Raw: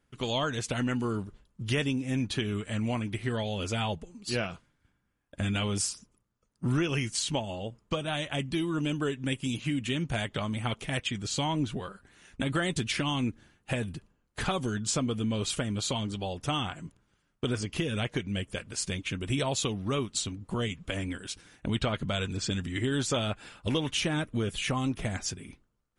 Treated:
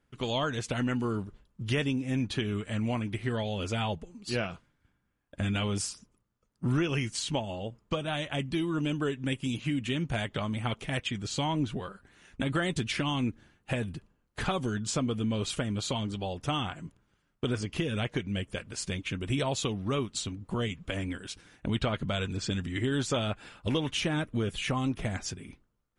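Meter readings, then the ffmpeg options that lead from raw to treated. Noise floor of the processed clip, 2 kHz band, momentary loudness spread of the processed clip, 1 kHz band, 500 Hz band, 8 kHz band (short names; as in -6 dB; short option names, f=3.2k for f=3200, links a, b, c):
-75 dBFS, -1.0 dB, 8 LU, 0.0 dB, 0.0 dB, -4.0 dB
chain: -af "highshelf=f=5.2k:g=-6"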